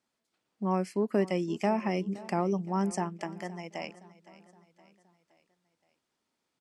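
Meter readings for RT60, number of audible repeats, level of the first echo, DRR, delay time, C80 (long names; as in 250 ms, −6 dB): no reverb audible, 3, −19.0 dB, no reverb audible, 518 ms, no reverb audible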